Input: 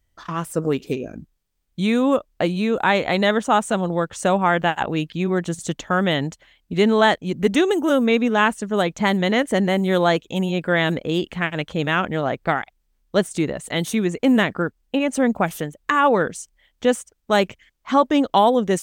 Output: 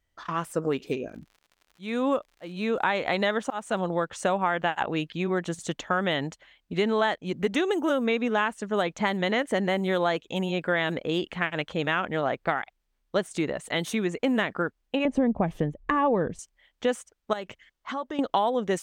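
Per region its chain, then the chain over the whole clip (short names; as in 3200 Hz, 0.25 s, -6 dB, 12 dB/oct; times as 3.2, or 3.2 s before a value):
1.08–3.78 auto swell 0.303 s + crackle 84/s -40 dBFS
15.05–16.39 tilt -4.5 dB/oct + notch 1400 Hz, Q 5.9
17.33–18.19 notch 2400 Hz + compressor 4:1, threshold -28 dBFS
whole clip: low shelf 330 Hz -9 dB; compressor 4:1, threshold -21 dBFS; high shelf 5700 Hz -10.5 dB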